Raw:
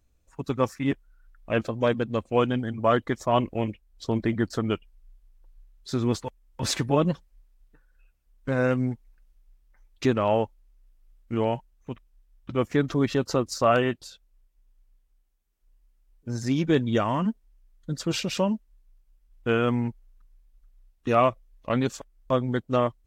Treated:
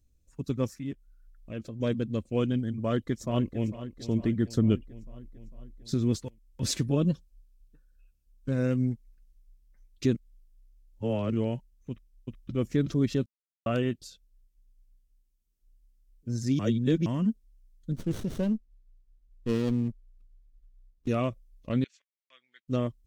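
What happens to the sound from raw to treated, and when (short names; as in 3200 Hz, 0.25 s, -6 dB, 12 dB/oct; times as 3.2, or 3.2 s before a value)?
0.67–1.8 compressor 1.5:1, threshold -43 dBFS
2.78–3.68 echo throw 0.45 s, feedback 60%, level -14 dB
4.57–5.94 low shelf 420 Hz +6.5 dB
6.89–8.54 Butterworth band-stop 2000 Hz, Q 6.9
10.15–11.32 reverse
11.9–12.52 echo throw 0.37 s, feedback 10%, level -1 dB
13.26–13.66 mute
16.59–17.06 reverse
17.91–21.08 running maximum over 17 samples
21.84–22.68 ladder band-pass 2400 Hz, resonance 55%
whole clip: EQ curve 220 Hz 0 dB, 560 Hz -8 dB, 810 Hz -17 dB, 5600 Hz -2 dB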